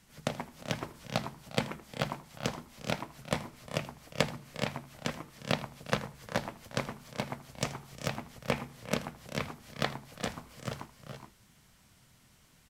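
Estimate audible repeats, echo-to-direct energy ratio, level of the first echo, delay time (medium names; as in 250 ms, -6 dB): 3, -6.0 dB, -17.5 dB, 80 ms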